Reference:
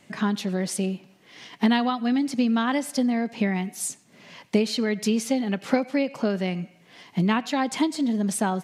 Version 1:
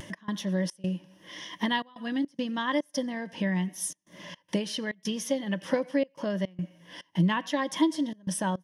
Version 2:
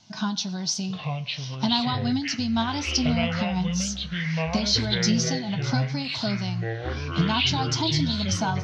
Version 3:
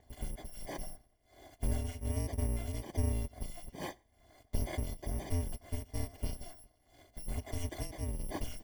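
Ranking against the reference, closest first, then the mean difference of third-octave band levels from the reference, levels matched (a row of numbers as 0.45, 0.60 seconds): 1, 2, 3; 5.5, 9.5, 13.0 decibels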